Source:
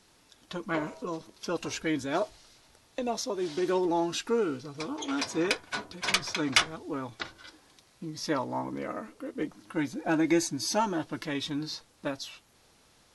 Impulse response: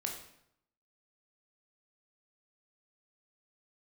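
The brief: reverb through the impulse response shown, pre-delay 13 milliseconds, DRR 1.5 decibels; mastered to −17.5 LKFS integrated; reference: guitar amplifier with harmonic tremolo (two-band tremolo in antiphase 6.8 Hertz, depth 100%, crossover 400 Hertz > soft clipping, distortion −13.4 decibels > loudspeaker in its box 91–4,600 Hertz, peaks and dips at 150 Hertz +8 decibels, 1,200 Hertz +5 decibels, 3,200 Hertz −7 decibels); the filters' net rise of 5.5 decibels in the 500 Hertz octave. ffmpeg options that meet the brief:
-filter_complex "[0:a]equalizer=frequency=500:width_type=o:gain=7,asplit=2[link_01][link_02];[1:a]atrim=start_sample=2205,adelay=13[link_03];[link_02][link_03]afir=irnorm=-1:irlink=0,volume=-2.5dB[link_04];[link_01][link_04]amix=inputs=2:normalize=0,acrossover=split=400[link_05][link_06];[link_05]aeval=exprs='val(0)*(1-1/2+1/2*cos(2*PI*6.8*n/s))':channel_layout=same[link_07];[link_06]aeval=exprs='val(0)*(1-1/2-1/2*cos(2*PI*6.8*n/s))':channel_layout=same[link_08];[link_07][link_08]amix=inputs=2:normalize=0,asoftclip=threshold=-22dB,highpass=91,equalizer=frequency=150:width_type=q:width=4:gain=8,equalizer=frequency=1200:width_type=q:width=4:gain=5,equalizer=frequency=3200:width_type=q:width=4:gain=-7,lowpass=frequency=4600:width=0.5412,lowpass=frequency=4600:width=1.3066,volume=15.5dB"

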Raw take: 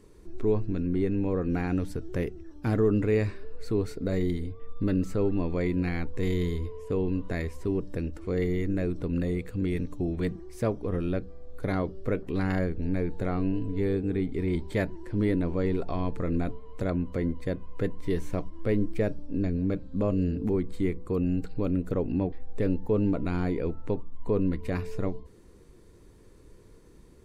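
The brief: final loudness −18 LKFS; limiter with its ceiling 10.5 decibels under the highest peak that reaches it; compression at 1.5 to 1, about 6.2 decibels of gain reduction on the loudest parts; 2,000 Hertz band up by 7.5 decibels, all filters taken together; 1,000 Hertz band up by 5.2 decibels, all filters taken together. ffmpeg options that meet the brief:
ffmpeg -i in.wav -af "equalizer=frequency=1000:width_type=o:gain=5,equalizer=frequency=2000:width_type=o:gain=7.5,acompressor=threshold=-37dB:ratio=1.5,volume=21.5dB,alimiter=limit=-8dB:level=0:latency=1" out.wav

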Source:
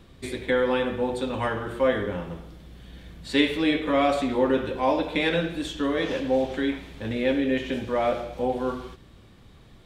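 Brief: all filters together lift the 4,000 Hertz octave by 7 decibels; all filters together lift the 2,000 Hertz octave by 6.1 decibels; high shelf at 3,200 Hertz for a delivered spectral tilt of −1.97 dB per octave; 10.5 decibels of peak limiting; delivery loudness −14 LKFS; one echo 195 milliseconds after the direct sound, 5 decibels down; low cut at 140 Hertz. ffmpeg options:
ffmpeg -i in.wav -af "highpass=140,equalizer=frequency=2000:width_type=o:gain=5,highshelf=frequency=3200:gain=3.5,equalizer=frequency=4000:width_type=o:gain=4.5,alimiter=limit=-14dB:level=0:latency=1,aecho=1:1:195:0.562,volume=10.5dB" out.wav

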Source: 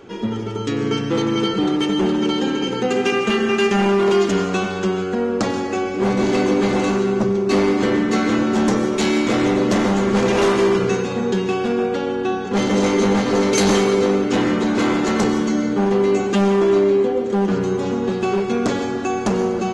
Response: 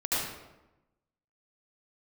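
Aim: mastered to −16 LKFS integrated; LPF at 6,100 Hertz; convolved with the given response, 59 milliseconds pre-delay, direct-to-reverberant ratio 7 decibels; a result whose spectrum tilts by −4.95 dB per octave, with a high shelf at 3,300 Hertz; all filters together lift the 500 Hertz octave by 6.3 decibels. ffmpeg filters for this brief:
-filter_complex "[0:a]lowpass=6100,equalizer=frequency=500:width_type=o:gain=8.5,highshelf=frequency=3300:gain=3,asplit=2[link_01][link_02];[1:a]atrim=start_sample=2205,adelay=59[link_03];[link_02][link_03]afir=irnorm=-1:irlink=0,volume=-16.5dB[link_04];[link_01][link_04]amix=inputs=2:normalize=0,volume=-2dB"

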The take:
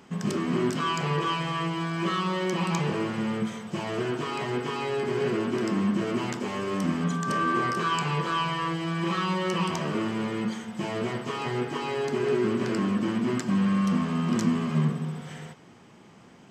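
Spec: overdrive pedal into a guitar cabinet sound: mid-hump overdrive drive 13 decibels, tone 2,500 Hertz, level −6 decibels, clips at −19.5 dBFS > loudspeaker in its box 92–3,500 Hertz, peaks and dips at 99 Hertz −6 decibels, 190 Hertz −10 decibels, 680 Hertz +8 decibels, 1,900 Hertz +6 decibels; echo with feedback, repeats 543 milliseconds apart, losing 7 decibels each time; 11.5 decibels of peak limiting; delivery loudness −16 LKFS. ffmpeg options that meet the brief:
ffmpeg -i in.wav -filter_complex "[0:a]alimiter=limit=-24dB:level=0:latency=1,aecho=1:1:543|1086|1629|2172|2715:0.447|0.201|0.0905|0.0407|0.0183,asplit=2[link_01][link_02];[link_02]highpass=frequency=720:poles=1,volume=13dB,asoftclip=type=tanh:threshold=-19.5dB[link_03];[link_01][link_03]amix=inputs=2:normalize=0,lowpass=frequency=2500:poles=1,volume=-6dB,highpass=92,equalizer=frequency=99:width_type=q:width=4:gain=-6,equalizer=frequency=190:width_type=q:width=4:gain=-10,equalizer=frequency=680:width_type=q:width=4:gain=8,equalizer=frequency=1900:width_type=q:width=4:gain=6,lowpass=frequency=3500:width=0.5412,lowpass=frequency=3500:width=1.3066,volume=13dB" out.wav

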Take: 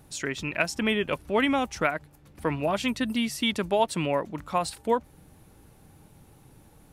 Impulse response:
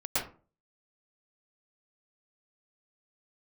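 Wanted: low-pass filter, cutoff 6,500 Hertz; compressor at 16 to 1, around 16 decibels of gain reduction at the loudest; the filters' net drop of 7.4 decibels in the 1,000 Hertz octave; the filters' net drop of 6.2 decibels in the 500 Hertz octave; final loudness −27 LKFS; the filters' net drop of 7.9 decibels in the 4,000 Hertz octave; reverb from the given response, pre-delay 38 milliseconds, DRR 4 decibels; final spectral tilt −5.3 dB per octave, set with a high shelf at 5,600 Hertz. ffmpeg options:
-filter_complex "[0:a]lowpass=6500,equalizer=frequency=500:width_type=o:gain=-5.5,equalizer=frequency=1000:width_type=o:gain=-7,equalizer=frequency=4000:width_type=o:gain=-7,highshelf=frequency=5600:gain=-8.5,acompressor=threshold=-40dB:ratio=16,asplit=2[link_01][link_02];[1:a]atrim=start_sample=2205,adelay=38[link_03];[link_02][link_03]afir=irnorm=-1:irlink=0,volume=-12dB[link_04];[link_01][link_04]amix=inputs=2:normalize=0,volume=18dB"

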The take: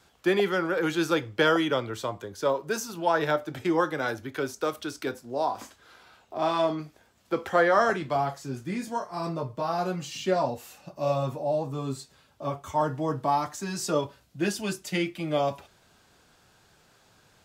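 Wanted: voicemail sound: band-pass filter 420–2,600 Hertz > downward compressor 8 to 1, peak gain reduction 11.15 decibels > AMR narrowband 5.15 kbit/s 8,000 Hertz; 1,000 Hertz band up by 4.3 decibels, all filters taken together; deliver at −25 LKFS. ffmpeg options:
ffmpeg -i in.wav -af "highpass=420,lowpass=2600,equalizer=frequency=1000:width_type=o:gain=6,acompressor=threshold=-25dB:ratio=8,volume=8.5dB" -ar 8000 -c:a libopencore_amrnb -b:a 5150 out.amr

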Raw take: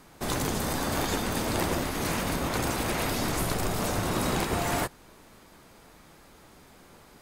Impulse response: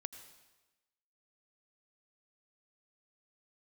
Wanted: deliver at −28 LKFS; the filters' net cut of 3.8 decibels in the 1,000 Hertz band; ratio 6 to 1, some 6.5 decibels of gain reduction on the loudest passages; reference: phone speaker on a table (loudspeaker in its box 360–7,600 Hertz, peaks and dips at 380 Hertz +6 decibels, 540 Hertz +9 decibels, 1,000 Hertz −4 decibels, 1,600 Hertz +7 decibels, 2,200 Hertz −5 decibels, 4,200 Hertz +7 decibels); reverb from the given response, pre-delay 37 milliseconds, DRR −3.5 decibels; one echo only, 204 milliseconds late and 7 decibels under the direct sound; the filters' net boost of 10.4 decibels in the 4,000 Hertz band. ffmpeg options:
-filter_complex "[0:a]equalizer=frequency=1000:width_type=o:gain=-6,equalizer=frequency=4000:width_type=o:gain=8.5,acompressor=threshold=-31dB:ratio=6,aecho=1:1:204:0.447,asplit=2[link_01][link_02];[1:a]atrim=start_sample=2205,adelay=37[link_03];[link_02][link_03]afir=irnorm=-1:irlink=0,volume=6.5dB[link_04];[link_01][link_04]amix=inputs=2:normalize=0,highpass=frequency=360:width=0.5412,highpass=frequency=360:width=1.3066,equalizer=frequency=380:width_type=q:width=4:gain=6,equalizer=frequency=540:width_type=q:width=4:gain=9,equalizer=frequency=1000:width_type=q:width=4:gain=-4,equalizer=frequency=1600:width_type=q:width=4:gain=7,equalizer=frequency=2200:width_type=q:width=4:gain=-5,equalizer=frequency=4200:width_type=q:width=4:gain=7,lowpass=frequency=7600:width=0.5412,lowpass=frequency=7600:width=1.3066,volume=-2dB"

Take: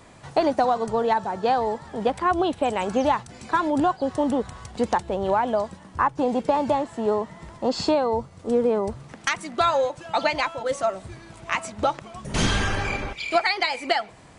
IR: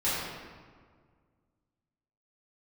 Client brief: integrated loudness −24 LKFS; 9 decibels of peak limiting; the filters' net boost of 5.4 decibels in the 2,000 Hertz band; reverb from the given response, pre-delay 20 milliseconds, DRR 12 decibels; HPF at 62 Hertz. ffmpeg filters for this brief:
-filter_complex "[0:a]highpass=62,equalizer=frequency=2000:width_type=o:gain=6.5,alimiter=limit=-13dB:level=0:latency=1,asplit=2[link_01][link_02];[1:a]atrim=start_sample=2205,adelay=20[link_03];[link_02][link_03]afir=irnorm=-1:irlink=0,volume=-23dB[link_04];[link_01][link_04]amix=inputs=2:normalize=0,volume=0.5dB"

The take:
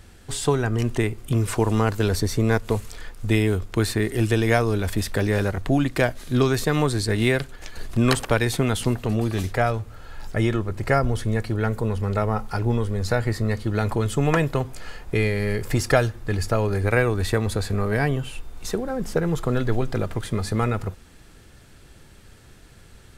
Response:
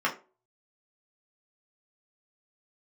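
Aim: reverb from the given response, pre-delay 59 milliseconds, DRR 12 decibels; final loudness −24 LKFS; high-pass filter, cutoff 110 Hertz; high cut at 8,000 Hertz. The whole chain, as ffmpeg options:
-filter_complex "[0:a]highpass=110,lowpass=8000,asplit=2[link_01][link_02];[1:a]atrim=start_sample=2205,adelay=59[link_03];[link_02][link_03]afir=irnorm=-1:irlink=0,volume=-24dB[link_04];[link_01][link_04]amix=inputs=2:normalize=0,volume=0.5dB"

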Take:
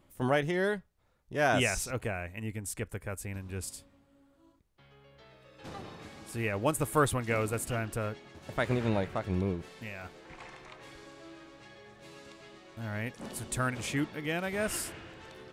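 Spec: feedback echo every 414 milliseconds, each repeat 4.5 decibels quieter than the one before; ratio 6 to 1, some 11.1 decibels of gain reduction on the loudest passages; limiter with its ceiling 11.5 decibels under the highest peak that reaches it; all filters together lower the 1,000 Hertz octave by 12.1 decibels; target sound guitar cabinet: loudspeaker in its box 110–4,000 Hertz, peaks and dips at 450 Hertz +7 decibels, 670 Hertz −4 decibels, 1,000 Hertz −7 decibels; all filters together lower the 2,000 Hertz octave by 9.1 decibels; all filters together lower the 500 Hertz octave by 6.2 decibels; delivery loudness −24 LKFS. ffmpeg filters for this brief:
ffmpeg -i in.wav -af "equalizer=frequency=500:width_type=o:gain=-9,equalizer=frequency=1000:width_type=o:gain=-7,equalizer=frequency=2000:width_type=o:gain=-8.5,acompressor=threshold=-39dB:ratio=6,alimiter=level_in=14.5dB:limit=-24dB:level=0:latency=1,volume=-14.5dB,highpass=110,equalizer=frequency=450:width_type=q:width=4:gain=7,equalizer=frequency=670:width_type=q:width=4:gain=-4,equalizer=frequency=1000:width_type=q:width=4:gain=-7,lowpass=frequency=4000:width=0.5412,lowpass=frequency=4000:width=1.3066,aecho=1:1:414|828|1242|1656|2070|2484|2898|3312|3726:0.596|0.357|0.214|0.129|0.0772|0.0463|0.0278|0.0167|0.01,volume=25.5dB" out.wav

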